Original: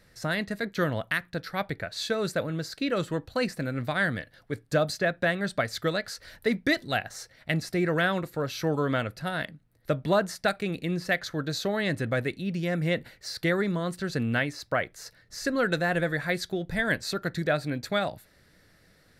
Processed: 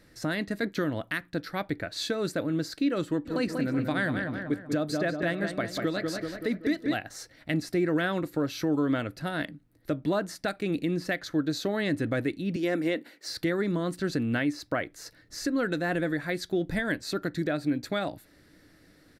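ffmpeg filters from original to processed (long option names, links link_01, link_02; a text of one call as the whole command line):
ffmpeg -i in.wav -filter_complex "[0:a]asplit=3[link_01][link_02][link_03];[link_01]afade=type=out:start_time=3.25:duration=0.02[link_04];[link_02]asplit=2[link_05][link_06];[link_06]adelay=190,lowpass=frequency=2600:poles=1,volume=-6.5dB,asplit=2[link_07][link_08];[link_08]adelay=190,lowpass=frequency=2600:poles=1,volume=0.55,asplit=2[link_09][link_10];[link_10]adelay=190,lowpass=frequency=2600:poles=1,volume=0.55,asplit=2[link_11][link_12];[link_12]adelay=190,lowpass=frequency=2600:poles=1,volume=0.55,asplit=2[link_13][link_14];[link_14]adelay=190,lowpass=frequency=2600:poles=1,volume=0.55,asplit=2[link_15][link_16];[link_16]adelay=190,lowpass=frequency=2600:poles=1,volume=0.55,asplit=2[link_17][link_18];[link_18]adelay=190,lowpass=frequency=2600:poles=1,volume=0.55[link_19];[link_05][link_07][link_09][link_11][link_13][link_15][link_17][link_19]amix=inputs=8:normalize=0,afade=type=in:start_time=3.25:duration=0.02,afade=type=out:start_time=6.94:duration=0.02[link_20];[link_03]afade=type=in:start_time=6.94:duration=0.02[link_21];[link_04][link_20][link_21]amix=inputs=3:normalize=0,asettb=1/sr,asplit=3[link_22][link_23][link_24];[link_22]atrim=end=12.564[link_25];[link_23]atrim=start=12.56:end=13.28,asetpts=PTS-STARTPTS,afade=type=in:duration=0.004:curve=qsin,afade=type=out:start_time=0.716:duration=0.004:curve=qsin,highpass=frequency=230:width=0.5412,highpass=frequency=230:width=1.3066[link_26];[link_24]atrim=start=13.276[link_27];[link_25][link_26]acrossfade=duration=0.004:curve1=hsin:curve2=qsin[link_28];[link_28][link_27]acrossfade=duration=0.004:curve1=qsin:curve2=hsin,equalizer=frequency=300:width=3.3:gain=13,alimiter=limit=-18dB:level=0:latency=1:release=367" out.wav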